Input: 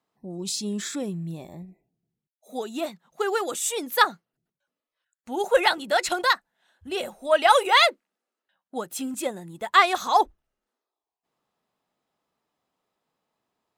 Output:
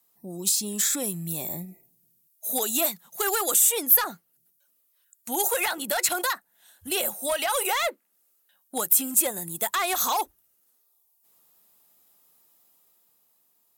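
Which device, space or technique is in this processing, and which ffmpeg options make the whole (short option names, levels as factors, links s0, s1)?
FM broadcast chain: -filter_complex "[0:a]highpass=80,dynaudnorm=f=120:g=17:m=1.78,acrossover=split=560|2600[s0][s1][s2];[s0]acompressor=threshold=0.0251:ratio=4[s3];[s1]acompressor=threshold=0.141:ratio=4[s4];[s2]acompressor=threshold=0.0112:ratio=4[s5];[s3][s4][s5]amix=inputs=3:normalize=0,aemphasis=mode=production:type=50fm,alimiter=limit=0.141:level=0:latency=1:release=58,asoftclip=type=hard:threshold=0.0891,lowpass=f=15000:w=0.5412,lowpass=f=15000:w=1.3066,aemphasis=mode=production:type=50fm"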